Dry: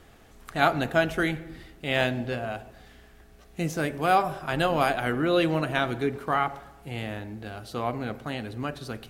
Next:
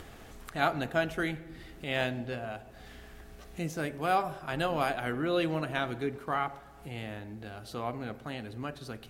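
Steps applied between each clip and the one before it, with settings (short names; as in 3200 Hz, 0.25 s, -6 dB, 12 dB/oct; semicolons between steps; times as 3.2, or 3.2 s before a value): upward compressor, threshold -32 dBFS; gain -6 dB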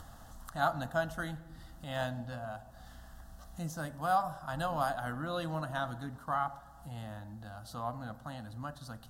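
fixed phaser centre 970 Hz, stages 4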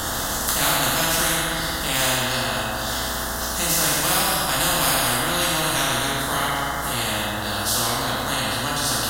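plate-style reverb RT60 1.3 s, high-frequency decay 0.8×, DRR -8.5 dB; spectral compressor 4:1; gain +5 dB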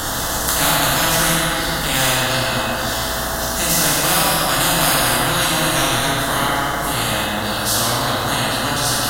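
shoebox room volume 180 m³, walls hard, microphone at 0.3 m; gain +3 dB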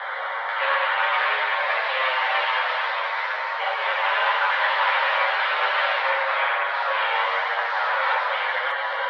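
mistuned SSB +260 Hz 280–2700 Hz; echoes that change speed 0.603 s, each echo +2 st, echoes 3, each echo -6 dB; chorus voices 4, 0.51 Hz, delay 10 ms, depth 1.1 ms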